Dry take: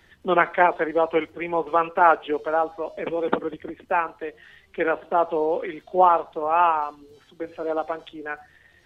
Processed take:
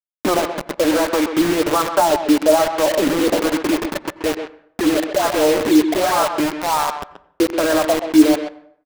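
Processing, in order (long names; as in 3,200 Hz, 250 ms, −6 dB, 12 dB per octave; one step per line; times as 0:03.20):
adaptive Wiener filter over 9 samples
leveller curve on the samples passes 1
downward compressor 6 to 1, threshold −29 dBFS, peak gain reduction 18.5 dB
leveller curve on the samples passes 3
hollow resonant body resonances 300/590/1,600 Hz, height 13 dB, ringing for 90 ms
auto-filter low-pass sine 1.2 Hz 260–1,600 Hz
0:03.67–0:06.40: all-pass dispersion highs, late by 135 ms, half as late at 890 Hz
bit reduction 4 bits
far-end echo of a speakerphone 130 ms, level −8 dB
convolution reverb RT60 0.65 s, pre-delay 77 ms, DRR 16.5 dB
level +1.5 dB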